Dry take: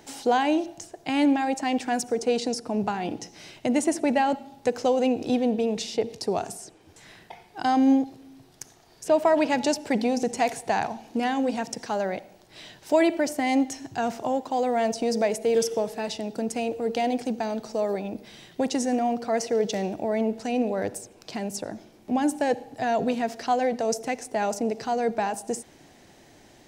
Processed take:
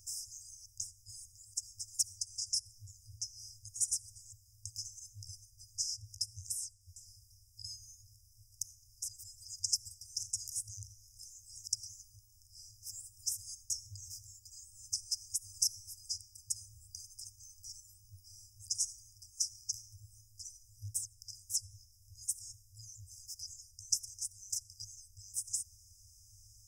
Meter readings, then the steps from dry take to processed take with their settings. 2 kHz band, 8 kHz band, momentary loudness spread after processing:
below −40 dB, +1.5 dB, 20 LU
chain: brick-wall band-stop 110–4,900 Hz
level +1.5 dB

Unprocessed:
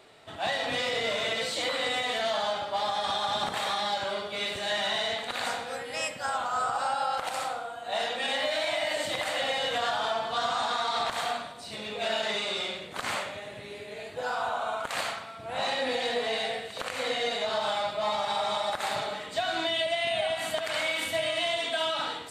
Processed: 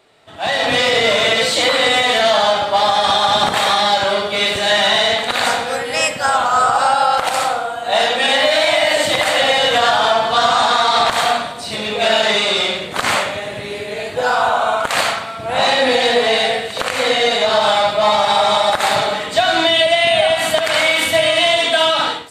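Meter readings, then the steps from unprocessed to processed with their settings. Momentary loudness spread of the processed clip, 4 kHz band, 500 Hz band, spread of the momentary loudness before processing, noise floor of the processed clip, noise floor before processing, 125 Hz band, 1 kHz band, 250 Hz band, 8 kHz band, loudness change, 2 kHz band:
7 LU, +15.0 dB, +15.0 dB, 7 LU, −28 dBFS, −43 dBFS, +15.0 dB, +15.0 dB, +15.0 dB, +15.0 dB, +15.0 dB, +15.0 dB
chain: automatic gain control gain up to 16 dB

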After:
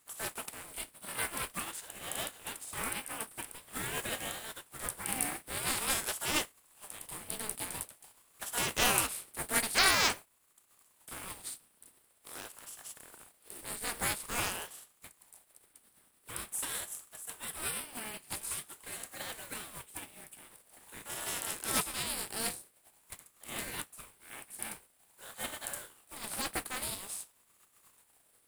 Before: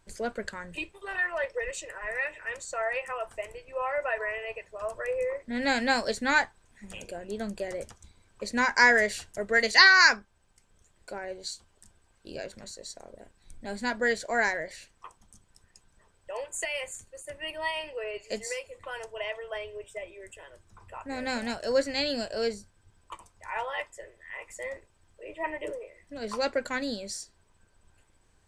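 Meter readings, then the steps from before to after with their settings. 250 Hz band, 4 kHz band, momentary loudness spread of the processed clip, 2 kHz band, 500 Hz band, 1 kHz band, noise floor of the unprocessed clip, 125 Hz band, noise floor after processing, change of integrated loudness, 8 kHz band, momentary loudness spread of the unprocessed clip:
−9.5 dB, −4.5 dB, 18 LU, −12.0 dB, −14.0 dB, −8.0 dB, −66 dBFS, can't be measured, −69 dBFS, −7.0 dB, +6.0 dB, 18 LU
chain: compressing power law on the bin magnitudes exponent 0.36
high shelf with overshoot 7,900 Hz +6.5 dB, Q 3
ring modulator whose carrier an LFO sweeps 710 Hz, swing 70%, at 0.47 Hz
level −5 dB

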